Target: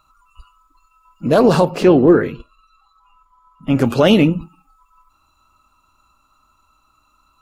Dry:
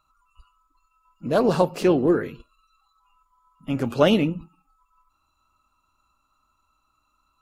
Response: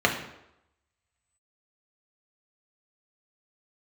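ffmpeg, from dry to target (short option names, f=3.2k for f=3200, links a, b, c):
-filter_complex "[0:a]asettb=1/sr,asplit=3[a][b][c];[a]atrim=end=1.654[d];[b]atrim=start=1.65:end=3.76,asetpts=PTS-STARTPTS,afade=t=in:d=0.004:c=qsin,afade=t=out:st=2.106:d=0.004:c=qsin,highshelf=f=5.3k:g=-11[e];[c]atrim=start=3.756[f];[d][e]acrossfade=d=0.004:c1=hsin:c2=qsin[g];[g][f]acrossfade=d=0.004:c1=qsin:c2=hsin,alimiter=level_in=11dB:limit=-1dB:release=50:level=0:latency=1,volume=-1dB"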